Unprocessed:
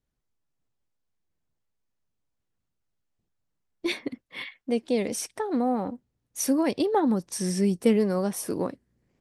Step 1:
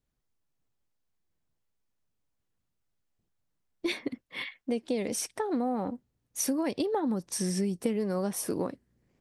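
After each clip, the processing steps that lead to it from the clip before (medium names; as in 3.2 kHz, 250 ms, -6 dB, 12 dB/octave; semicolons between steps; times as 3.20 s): compression 6:1, threshold -26 dBFS, peak gain reduction 10.5 dB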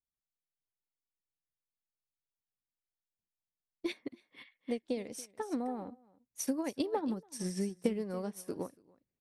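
delay 283 ms -13.5 dB; upward expansion 2.5:1, over -38 dBFS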